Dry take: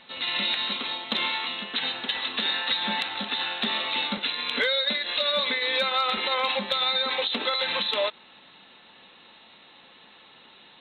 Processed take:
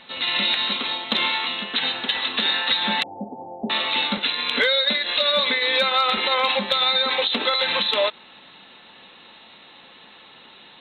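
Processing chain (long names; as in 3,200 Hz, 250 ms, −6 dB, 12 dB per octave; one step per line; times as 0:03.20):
0:03.03–0:03.70: Butterworth low-pass 840 Hz 72 dB per octave
level +5 dB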